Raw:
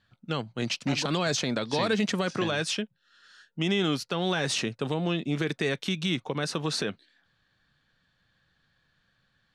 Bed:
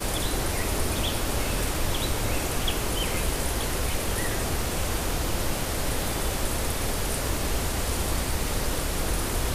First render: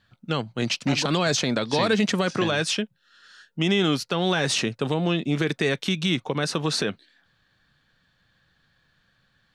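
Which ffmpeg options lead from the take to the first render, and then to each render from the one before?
-af "volume=1.68"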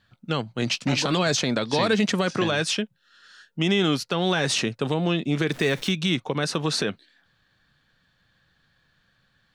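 -filter_complex "[0:a]asettb=1/sr,asplit=3[s0][s1][s2];[s0]atrim=end=0.654[s3];[s1]atrim=start=0.65:end=1.23,asetpts=PTS-STARTPTS,afade=t=in:d=0.004:c=qsin,afade=t=out:st=0.576:d=0.004:c=qsin,asplit=2[s4][s5];[s5]adelay=16,volume=0.282[s6];[s4][s6]amix=inputs=2:normalize=0,atrim=end_sample=25578[s7];[s2]atrim=start=1.226[s8];[s3][s7]acrossfade=d=0.004:c1=hsin:c2=qsin[s9];[s9][s8]acrossfade=d=0.004:c1=qsin:c2=hsin,asettb=1/sr,asplit=3[s10][s11][s12];[s10]atrim=end=5.514[s13];[s11]atrim=start=5.51:end=5.91,asetpts=PTS-STARTPTS,afade=t=in:d=0.004:c=qsin,afade=t=out:st=0.396:d=0.004:c=qsin,aeval=exprs='val(0)+0.5*0.0141*sgn(val(0))':c=same[s14];[s12]atrim=start=5.906[s15];[s13][s14]acrossfade=d=0.004:c1=hsin:c2=qsin[s16];[s16][s15]acrossfade=d=0.004:c1=qsin:c2=hsin"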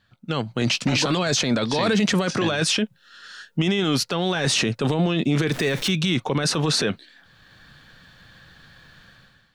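-af "dynaudnorm=f=130:g=7:m=6.31,alimiter=limit=0.237:level=0:latency=1:release=16"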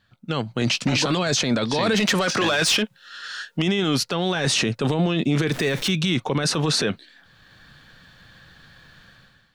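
-filter_complex "[0:a]asettb=1/sr,asplit=3[s0][s1][s2];[s0]atrim=end=1.944[s3];[s1]atrim=start=1.94:end=3.62,asetpts=PTS-STARTPTS,afade=t=in:d=0.004:c=qsin,afade=t=out:st=1.676:d=0.004:c=qsin,asplit=2[s4][s5];[s5]highpass=f=720:p=1,volume=4.47,asoftclip=type=tanh:threshold=0.237[s6];[s4][s6]amix=inputs=2:normalize=0,lowpass=f=7900:p=1,volume=0.501[s7];[s2]atrim=start=3.616[s8];[s3][s7]acrossfade=d=0.004:c1=hsin:c2=qsin[s9];[s9][s8]acrossfade=d=0.004:c1=qsin:c2=hsin"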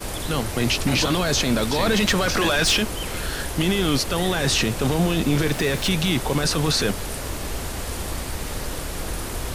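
-filter_complex "[1:a]volume=0.794[s0];[0:a][s0]amix=inputs=2:normalize=0"

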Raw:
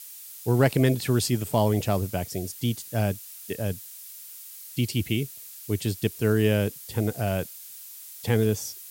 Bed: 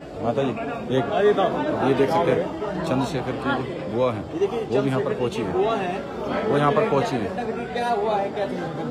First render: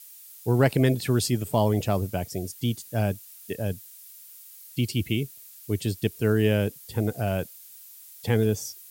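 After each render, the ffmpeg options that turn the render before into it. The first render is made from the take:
-af "afftdn=nr=6:nf=-43"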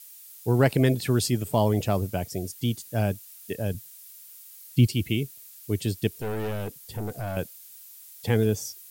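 -filter_complex "[0:a]asettb=1/sr,asplit=3[s0][s1][s2];[s0]atrim=end=3.744[s3];[s1]atrim=start=3.74:end=4.87,asetpts=PTS-STARTPTS,afade=t=in:d=0.004:c=qsin,afade=t=out:st=1.126:d=0.004:c=qsin,lowshelf=f=250:g=10.5[s4];[s2]atrim=start=4.866[s5];[s3][s4]acrossfade=d=0.004:c1=hsin:c2=qsin[s6];[s6][s5]acrossfade=d=0.004:c1=qsin:c2=hsin,asettb=1/sr,asplit=3[s7][s8][s9];[s7]atrim=end=6.184[s10];[s8]atrim=start=6.18:end=7.37,asetpts=PTS-STARTPTS,afade=t=in:d=0.004:c=qsin,afade=t=out:st=1.186:d=0.004:c=qsin,aeval=exprs='(tanh(22.4*val(0)+0.25)-tanh(0.25))/22.4':c=same[s11];[s9]atrim=start=7.366[s12];[s10][s11]acrossfade=d=0.004:c1=hsin:c2=qsin[s13];[s13][s12]acrossfade=d=0.004:c1=qsin:c2=hsin"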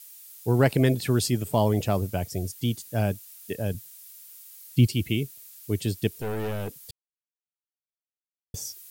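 -filter_complex "[0:a]asettb=1/sr,asplit=3[s0][s1][s2];[s0]atrim=end=2.014[s3];[s1]atrim=start=2.01:end=2.52,asetpts=PTS-STARTPTS,afade=t=in:d=0.004:c=qsin,afade=t=out:st=0.506:d=0.004:c=qsin,asubboost=boost=11:cutoff=140[s4];[s2]atrim=start=2.516[s5];[s3][s4]acrossfade=d=0.004:c1=hsin:c2=qsin[s6];[s6][s5]acrossfade=d=0.004:c1=qsin:c2=hsin,asplit=3[s7][s8][s9];[s7]atrim=end=6.91,asetpts=PTS-STARTPTS,afade=t=out:st=6.906:d=0.004:c=hsin[s10];[s8]atrim=start=6.91:end=8.54,asetpts=PTS-STARTPTS,volume=0[s11];[s9]atrim=start=8.54,asetpts=PTS-STARTPTS,afade=t=in:d=0.004:c=hsin[s12];[s10][s11][s12]concat=n=3:v=0:a=1"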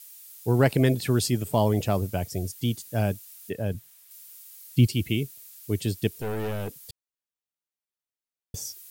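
-filter_complex "[0:a]asettb=1/sr,asplit=3[s0][s1][s2];[s0]atrim=end=3.494[s3];[s1]atrim=start=3.49:end=4.11,asetpts=PTS-STARTPTS,afade=t=in:d=0.004:c=qsin,afade=t=out:st=0.616:d=0.004:c=qsin,acrossover=split=3100[s4][s5];[s5]acompressor=threshold=0.00316:ratio=4:attack=1:release=60[s6];[s4][s6]amix=inputs=2:normalize=0[s7];[s2]atrim=start=4.106[s8];[s3][s7]acrossfade=d=0.004:c1=hsin:c2=qsin[s9];[s9][s8]acrossfade=d=0.004:c1=qsin:c2=hsin"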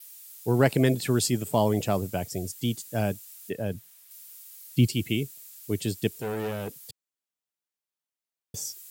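-af "highpass=120,adynamicequalizer=threshold=0.00126:dfrequency=7500:dqfactor=5.8:tfrequency=7500:tqfactor=5.8:attack=5:release=100:ratio=0.375:range=3:mode=boostabove:tftype=bell"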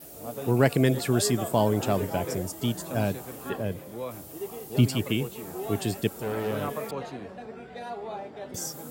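-filter_complex "[1:a]volume=0.2[s0];[0:a][s0]amix=inputs=2:normalize=0"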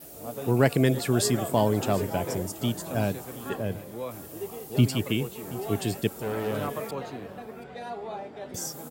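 -af "aecho=1:1:728:0.119"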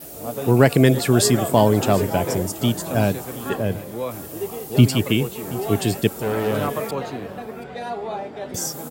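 -af "volume=2.37,alimiter=limit=0.891:level=0:latency=1"

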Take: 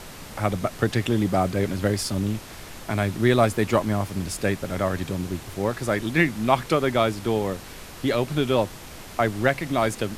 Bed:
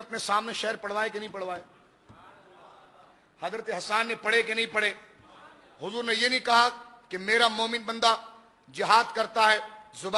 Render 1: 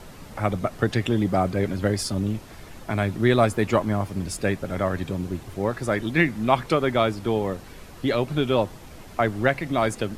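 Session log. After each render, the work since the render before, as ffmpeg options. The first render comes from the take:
-af "afftdn=nr=8:nf=-41"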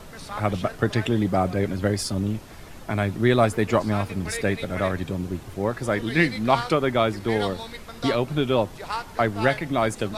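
-filter_complex "[1:a]volume=0.335[s0];[0:a][s0]amix=inputs=2:normalize=0"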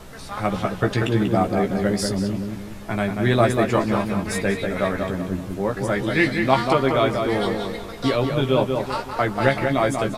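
-filter_complex "[0:a]asplit=2[s0][s1];[s1]adelay=15,volume=0.562[s2];[s0][s2]amix=inputs=2:normalize=0,asplit=2[s3][s4];[s4]adelay=188,lowpass=f=2600:p=1,volume=0.596,asplit=2[s5][s6];[s6]adelay=188,lowpass=f=2600:p=1,volume=0.42,asplit=2[s7][s8];[s8]adelay=188,lowpass=f=2600:p=1,volume=0.42,asplit=2[s9][s10];[s10]adelay=188,lowpass=f=2600:p=1,volume=0.42,asplit=2[s11][s12];[s12]adelay=188,lowpass=f=2600:p=1,volume=0.42[s13];[s3][s5][s7][s9][s11][s13]amix=inputs=6:normalize=0"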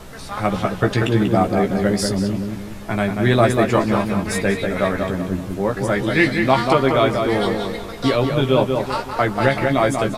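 -af "volume=1.41,alimiter=limit=0.794:level=0:latency=1"

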